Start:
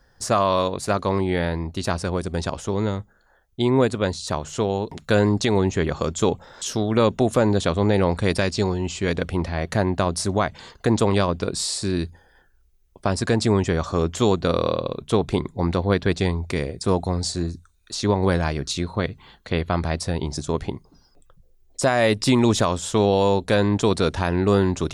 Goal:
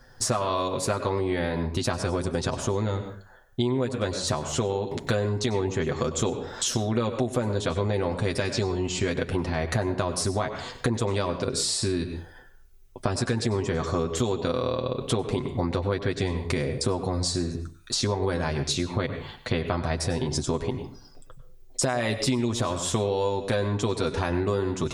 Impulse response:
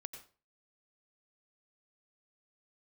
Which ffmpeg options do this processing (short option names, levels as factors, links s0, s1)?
-filter_complex "[0:a]asplit=2[s0][s1];[1:a]atrim=start_sample=2205,adelay=8[s2];[s1][s2]afir=irnorm=-1:irlink=0,volume=1.12[s3];[s0][s3]amix=inputs=2:normalize=0,acompressor=threshold=0.0398:ratio=6,volume=1.68"